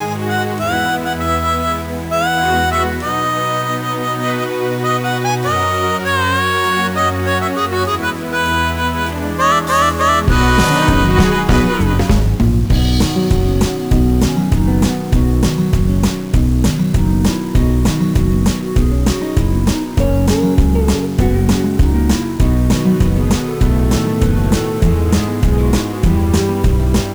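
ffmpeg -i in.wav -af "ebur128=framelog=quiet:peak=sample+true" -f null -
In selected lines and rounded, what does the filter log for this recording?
Integrated loudness:
  I:         -15.0 LUFS
  Threshold: -25.0 LUFS
Loudness range:
  LRA:         3.5 LU
  Threshold: -34.9 LUFS
  LRA low:   -16.6 LUFS
  LRA high:  -13.1 LUFS
Sample peak:
  Peak:       -2.5 dBFS
True peak:
  Peak:       -2.5 dBFS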